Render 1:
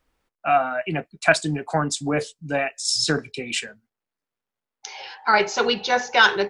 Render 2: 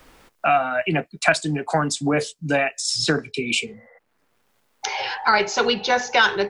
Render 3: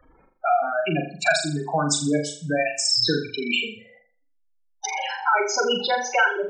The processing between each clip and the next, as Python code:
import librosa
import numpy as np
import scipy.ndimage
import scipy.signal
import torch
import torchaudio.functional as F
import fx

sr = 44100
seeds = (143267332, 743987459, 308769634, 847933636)

y1 = fx.spec_repair(x, sr, seeds[0], start_s=3.4, length_s=0.55, low_hz=490.0, high_hz=2100.0, source='before')
y1 = fx.band_squash(y1, sr, depth_pct=70)
y1 = y1 * librosa.db_to_amplitude(1.0)
y2 = fx.spec_gate(y1, sr, threshold_db=-10, keep='strong')
y2 = fx.high_shelf(y2, sr, hz=4200.0, db=10.0)
y2 = fx.room_flutter(y2, sr, wall_m=7.1, rt60_s=0.43)
y2 = y2 * librosa.db_to_amplitude(-2.5)